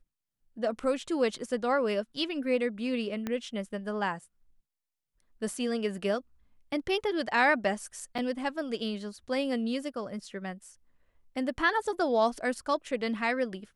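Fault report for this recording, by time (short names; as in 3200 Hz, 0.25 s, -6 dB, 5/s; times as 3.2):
3.27 pop -19 dBFS
8.18–8.19 gap 5.9 ms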